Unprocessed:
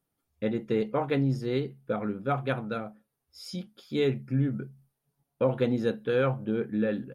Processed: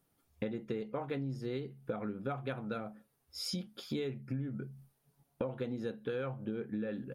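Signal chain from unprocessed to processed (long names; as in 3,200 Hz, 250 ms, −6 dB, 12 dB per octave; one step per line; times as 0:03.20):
downward compressor 10 to 1, threshold −40 dBFS, peak gain reduction 20 dB
level +5.5 dB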